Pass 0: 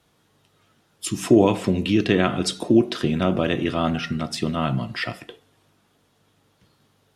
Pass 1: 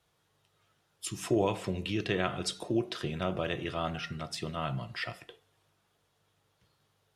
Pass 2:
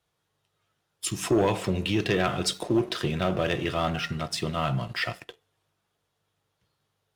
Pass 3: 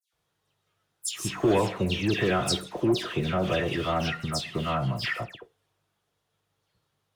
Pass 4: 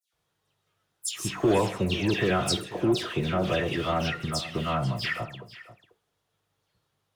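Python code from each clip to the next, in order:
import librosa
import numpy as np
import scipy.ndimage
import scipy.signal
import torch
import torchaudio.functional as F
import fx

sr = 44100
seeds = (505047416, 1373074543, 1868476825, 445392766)

y1 = fx.peak_eq(x, sr, hz=250.0, db=-11.5, octaves=0.7)
y1 = y1 * 10.0 ** (-8.5 / 20.0)
y2 = fx.leveller(y1, sr, passes=2)
y3 = fx.dispersion(y2, sr, late='lows', ms=132.0, hz=2600.0)
y4 = y3 + 10.0 ** (-16.5 / 20.0) * np.pad(y3, (int(491 * sr / 1000.0), 0))[:len(y3)]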